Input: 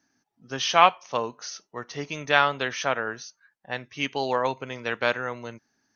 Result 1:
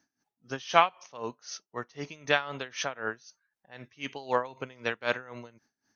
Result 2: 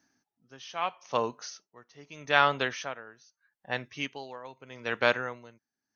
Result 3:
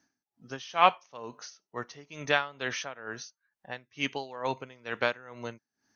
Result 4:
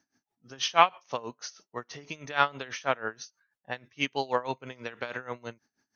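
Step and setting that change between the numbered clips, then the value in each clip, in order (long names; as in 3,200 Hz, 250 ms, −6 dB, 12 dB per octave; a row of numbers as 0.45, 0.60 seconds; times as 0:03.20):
tremolo with a sine in dB, speed: 3.9, 0.79, 2.2, 6.2 Hertz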